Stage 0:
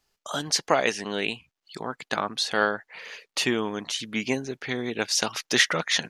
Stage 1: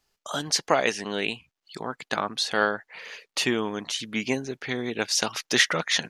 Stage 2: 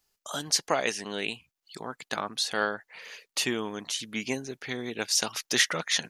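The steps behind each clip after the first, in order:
no audible change
treble shelf 7 kHz +11.5 dB; trim -5 dB

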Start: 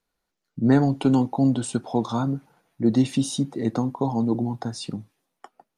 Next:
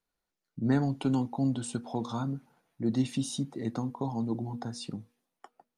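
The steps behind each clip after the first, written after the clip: de-hum 239.7 Hz, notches 2; dynamic bell 490 Hz, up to -4 dB, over -30 dBFS, Q 0.73; trim -6.5 dB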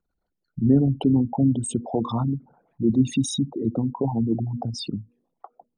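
resonances exaggerated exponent 3; trim +8.5 dB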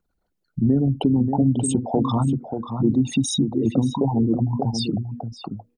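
compression 4:1, threshold -20 dBFS, peak gain reduction 7 dB; echo from a far wall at 100 m, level -7 dB; trim +4.5 dB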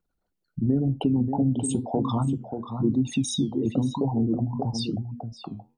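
flange 0.99 Hz, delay 6.3 ms, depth 6.7 ms, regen -78%

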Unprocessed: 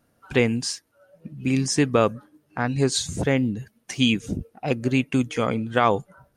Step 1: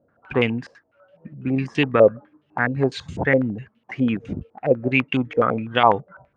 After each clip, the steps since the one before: high-pass 51 Hz; step-sequenced low-pass 12 Hz 550–3000 Hz; trim -1 dB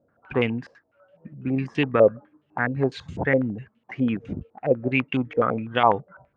treble shelf 4.6 kHz -8.5 dB; trim -2.5 dB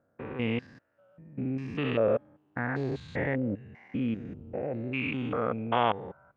spectrogram pixelated in time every 200 ms; dynamic bell 3.4 kHz, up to +5 dB, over -46 dBFS, Q 1.1; trim -3.5 dB

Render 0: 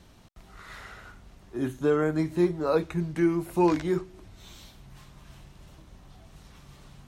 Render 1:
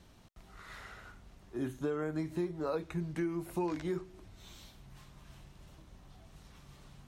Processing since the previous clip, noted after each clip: compression 6:1, threshold -26 dBFS, peak gain reduction 8.5 dB; trim -5 dB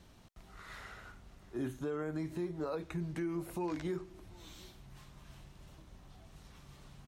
peak limiter -29 dBFS, peak gain reduction 5.5 dB; delay 736 ms -23.5 dB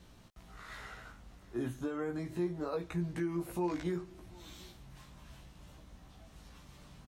doubling 17 ms -4 dB

